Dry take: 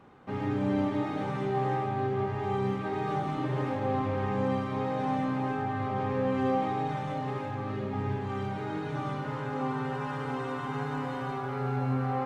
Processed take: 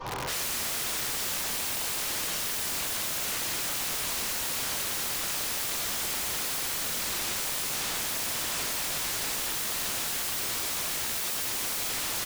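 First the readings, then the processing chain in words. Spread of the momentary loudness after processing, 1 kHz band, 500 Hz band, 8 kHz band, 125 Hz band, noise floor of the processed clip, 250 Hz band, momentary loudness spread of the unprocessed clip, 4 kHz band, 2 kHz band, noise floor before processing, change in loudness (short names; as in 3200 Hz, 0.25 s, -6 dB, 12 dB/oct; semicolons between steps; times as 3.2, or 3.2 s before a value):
0 LU, -7.0 dB, -10.5 dB, n/a, -15.0 dB, -32 dBFS, -14.5 dB, 5 LU, +19.0 dB, +5.5 dB, -35 dBFS, +3.0 dB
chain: CVSD 32 kbps; thirty-one-band EQ 100 Hz +3 dB, 250 Hz -11 dB, 1000 Hz +11 dB; on a send: feedback echo 99 ms, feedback 58%, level -11 dB; on the sum: shoebox room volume 100 m³, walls mixed, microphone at 4.4 m; in parallel at -1.5 dB: limiter -24 dBFS, peak gain reduction 23 dB; on the sum: wrapped overs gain 26.5 dB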